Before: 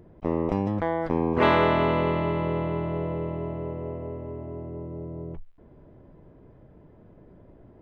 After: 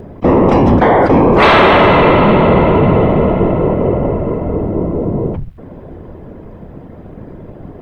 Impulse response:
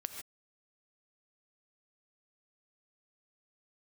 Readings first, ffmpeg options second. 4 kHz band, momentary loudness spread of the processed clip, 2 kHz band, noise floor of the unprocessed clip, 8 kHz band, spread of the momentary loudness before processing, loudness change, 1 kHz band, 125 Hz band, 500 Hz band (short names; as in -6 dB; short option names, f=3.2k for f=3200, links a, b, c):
+17.0 dB, 10 LU, +16.5 dB, -53 dBFS, n/a, 16 LU, +16.0 dB, +16.5 dB, +15.5 dB, +16.0 dB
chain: -af "afftfilt=real='hypot(re,im)*cos(2*PI*random(0))':imag='hypot(re,im)*sin(2*PI*random(1))':win_size=512:overlap=0.75,apsyclip=29.5dB,bandreject=f=60:t=h:w=6,bandreject=f=120:t=h:w=6,volume=-3.5dB"